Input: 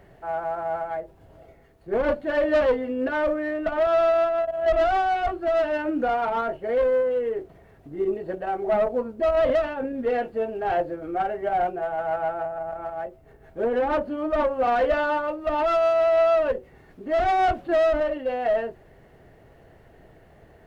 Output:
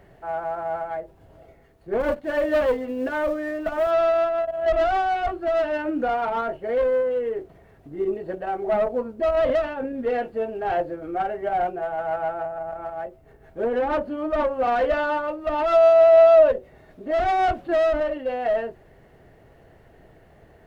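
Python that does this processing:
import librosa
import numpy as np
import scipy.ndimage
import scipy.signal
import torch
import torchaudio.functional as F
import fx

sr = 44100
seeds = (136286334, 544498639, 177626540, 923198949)

y = fx.law_mismatch(x, sr, coded='A', at=(2.0, 3.91))
y = fx.small_body(y, sr, hz=(620.0, 3700.0), ring_ms=45, db=11, at=(15.72, 17.11))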